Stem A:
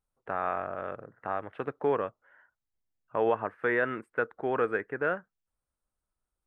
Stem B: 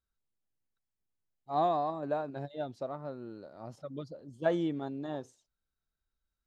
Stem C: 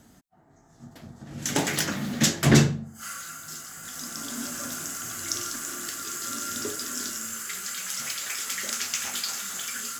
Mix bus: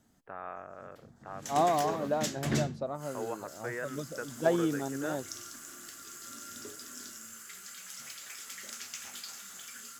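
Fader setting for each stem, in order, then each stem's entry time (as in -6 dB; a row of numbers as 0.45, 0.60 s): -11.0, +2.0, -13.0 dB; 0.00, 0.00, 0.00 s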